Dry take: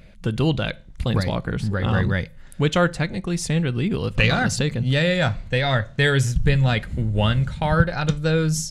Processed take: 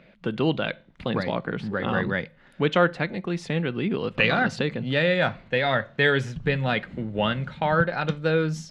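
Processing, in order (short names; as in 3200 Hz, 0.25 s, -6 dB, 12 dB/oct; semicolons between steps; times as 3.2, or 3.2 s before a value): three-band isolator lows -22 dB, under 170 Hz, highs -24 dB, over 3900 Hz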